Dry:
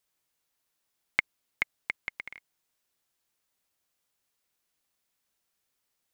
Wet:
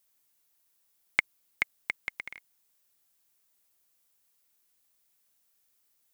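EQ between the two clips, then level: treble shelf 7.9 kHz +11.5 dB; 0.0 dB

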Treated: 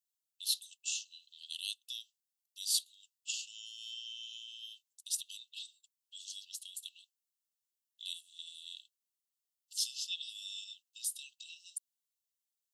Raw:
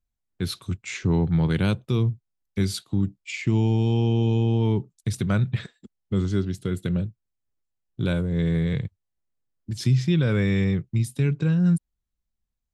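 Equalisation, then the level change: brick-wall FIR high-pass 2.6 kHz; treble shelf 4.6 kHz +11 dB; -4.5 dB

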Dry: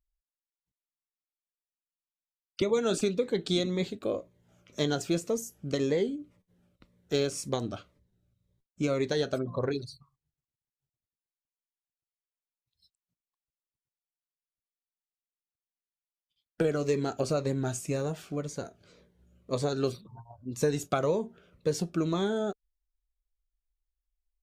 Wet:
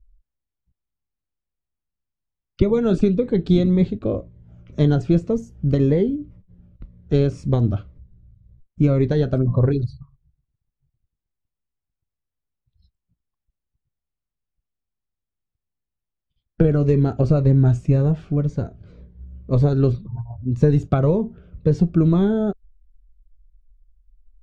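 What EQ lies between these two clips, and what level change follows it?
distance through air 64 m; RIAA curve playback; bass shelf 150 Hz +9 dB; +3.0 dB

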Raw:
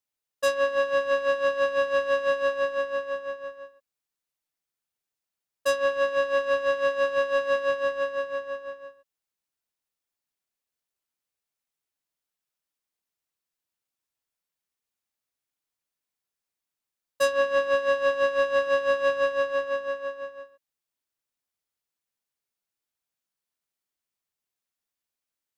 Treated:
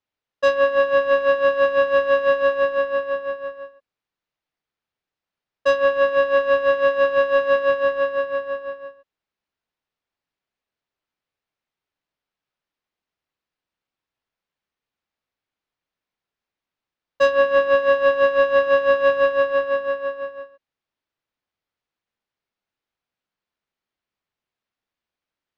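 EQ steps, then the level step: distance through air 210 m; +7.5 dB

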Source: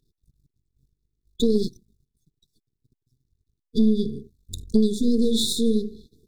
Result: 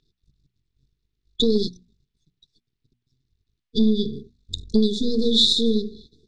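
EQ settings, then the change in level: distance through air 120 m; peaking EQ 3.3 kHz +13 dB 2.7 oct; hum notches 60/120/180/240 Hz; 0.0 dB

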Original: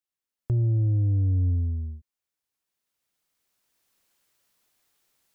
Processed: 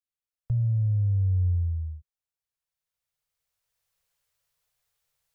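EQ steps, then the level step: elliptic band-stop 160–450 Hz; bass shelf 160 Hz +9.5 dB; -7.0 dB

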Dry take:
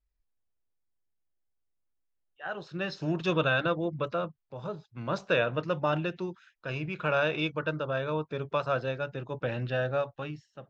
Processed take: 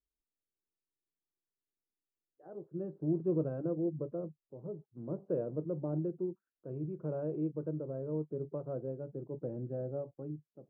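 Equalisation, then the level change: dynamic bell 150 Hz, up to +6 dB, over -49 dBFS, Q 4.2; four-pole ladder low-pass 440 Hz, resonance 40%; tilt EQ +3.5 dB/octave; +8.0 dB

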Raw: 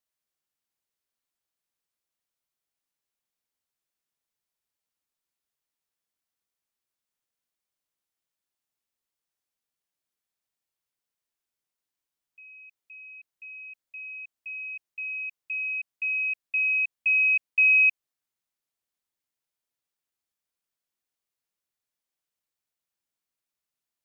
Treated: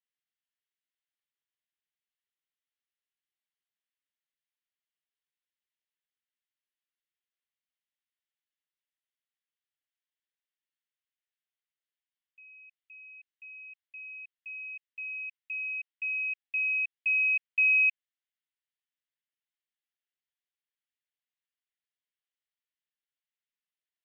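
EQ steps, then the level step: Butterworth band-pass 2.4 kHz, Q 1.4; peaking EQ 2.4 kHz -5.5 dB 0.33 oct; 0.0 dB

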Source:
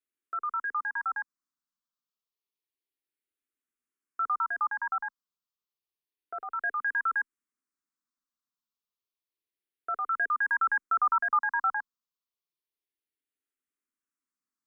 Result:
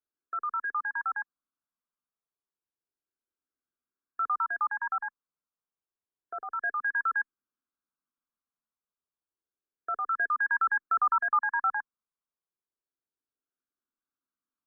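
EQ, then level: brick-wall FIR low-pass 1.7 kHz; 0.0 dB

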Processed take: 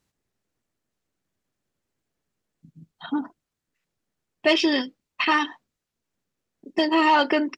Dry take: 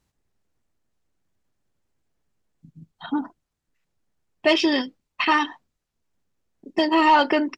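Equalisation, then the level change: bass shelf 79 Hz -11.5 dB; peaking EQ 870 Hz -3 dB; 0.0 dB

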